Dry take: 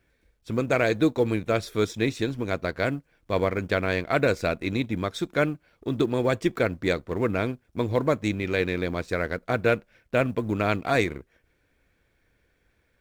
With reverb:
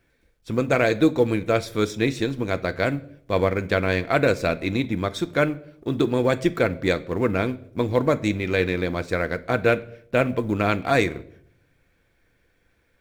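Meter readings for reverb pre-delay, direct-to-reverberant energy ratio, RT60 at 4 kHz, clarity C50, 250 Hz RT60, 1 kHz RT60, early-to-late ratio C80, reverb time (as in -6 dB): 4 ms, 12.0 dB, 0.50 s, 19.0 dB, 0.90 s, 0.55 s, 23.0 dB, 0.65 s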